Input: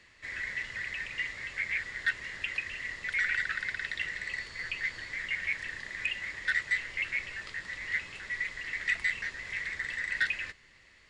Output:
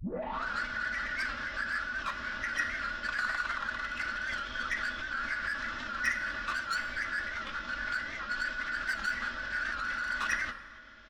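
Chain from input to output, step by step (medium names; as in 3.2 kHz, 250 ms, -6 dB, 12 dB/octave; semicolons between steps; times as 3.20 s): tape start-up on the opening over 0.50 s; Chebyshev low-pass 7.3 kHz, order 2; comb 3.5 ms, depth 61%; in parallel at 0 dB: peak limiter -26.5 dBFS, peak gain reduction 10.5 dB; on the sum: saturation -26 dBFS, distortion -11 dB; small resonant body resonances 240/640/2500 Hz, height 11 dB, ringing for 85 ms; formant shift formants -5 st; plate-style reverb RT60 1.5 s, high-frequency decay 0.6×, DRR 9 dB; warped record 78 rpm, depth 100 cents; trim -2.5 dB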